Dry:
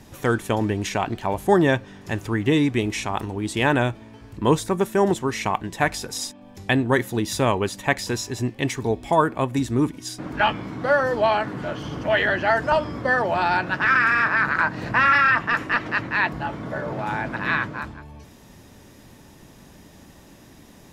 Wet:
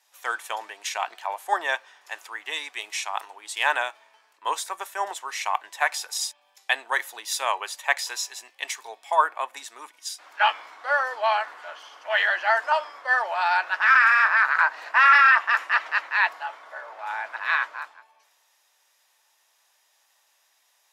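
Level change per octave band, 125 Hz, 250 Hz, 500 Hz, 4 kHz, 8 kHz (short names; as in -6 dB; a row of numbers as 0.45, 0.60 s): under -40 dB, under -30 dB, -10.5 dB, 0.0 dB, +0.5 dB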